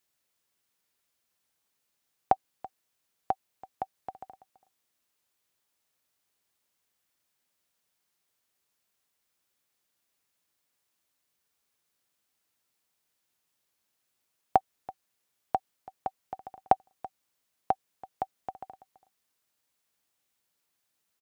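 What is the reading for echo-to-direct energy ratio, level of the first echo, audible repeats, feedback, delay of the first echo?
-19.5 dB, -19.5 dB, 1, no regular repeats, 332 ms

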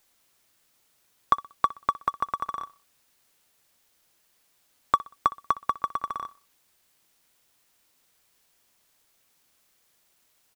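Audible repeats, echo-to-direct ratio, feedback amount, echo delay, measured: 2, -18.5 dB, 36%, 62 ms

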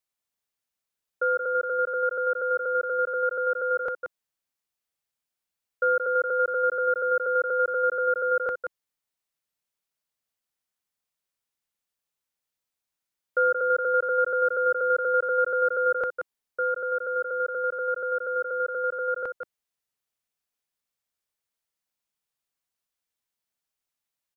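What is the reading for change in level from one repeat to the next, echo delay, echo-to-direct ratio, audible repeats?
no regular repeats, 177 ms, -7.0 dB, 1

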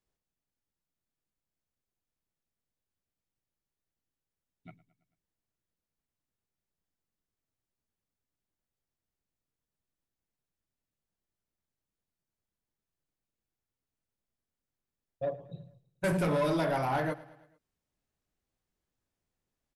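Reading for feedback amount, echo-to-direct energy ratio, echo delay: 55%, -18.0 dB, 110 ms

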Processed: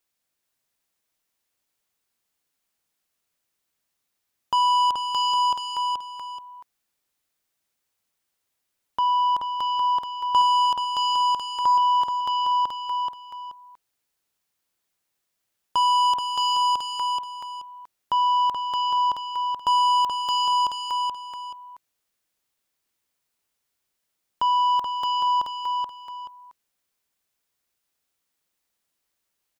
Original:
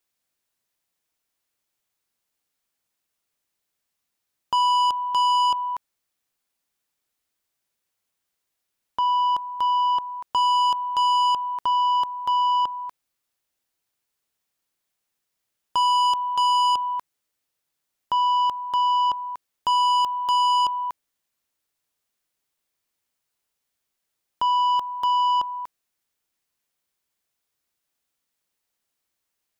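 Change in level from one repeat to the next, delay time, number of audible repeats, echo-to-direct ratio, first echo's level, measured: -11.0 dB, 429 ms, 2, -4.0 dB, -4.5 dB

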